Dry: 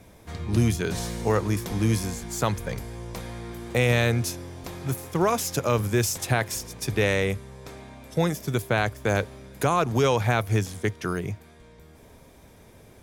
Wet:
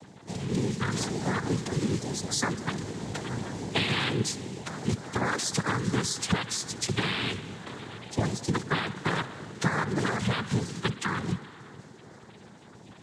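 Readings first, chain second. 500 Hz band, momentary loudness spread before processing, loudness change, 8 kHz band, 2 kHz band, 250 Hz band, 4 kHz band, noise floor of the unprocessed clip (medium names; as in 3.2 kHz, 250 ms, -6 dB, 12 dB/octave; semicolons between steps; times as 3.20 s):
-8.5 dB, 15 LU, -4.0 dB, -1.5 dB, -2.0 dB, -2.0 dB, +2.5 dB, -52 dBFS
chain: coarse spectral quantiser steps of 30 dB; peaking EQ 510 Hz -11.5 dB 1.2 oct; compression, threshold -31 dBFS, peak gain reduction 11.5 dB; tape echo 62 ms, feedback 90%, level -16 dB, low-pass 4.6 kHz; noise-vocoded speech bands 6; trim +7 dB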